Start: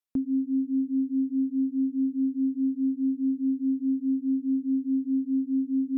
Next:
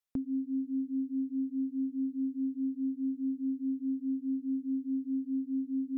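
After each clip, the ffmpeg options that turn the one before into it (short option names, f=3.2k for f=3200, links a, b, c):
-af "equalizer=f=280:w=1.5:g=-7"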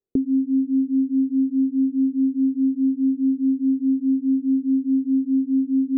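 -af "lowpass=f=400:t=q:w=4.9,volume=8dB"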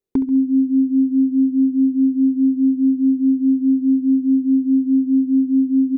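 -filter_complex "[0:a]asoftclip=type=hard:threshold=-14dB,asplit=2[a][b];[b]aecho=0:1:68|136|204|272|340:0.237|0.111|0.0524|0.0246|0.0116[c];[a][c]amix=inputs=2:normalize=0,volume=3dB"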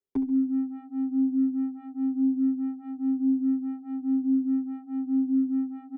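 -filter_complex "[0:a]acrossover=split=120|210[a][b][c];[b]asoftclip=type=tanh:threshold=-33dB[d];[a][d][c]amix=inputs=3:normalize=0,asplit=2[e][f];[f]adelay=7.2,afreqshift=-1[g];[e][g]amix=inputs=2:normalize=1,volume=-6dB"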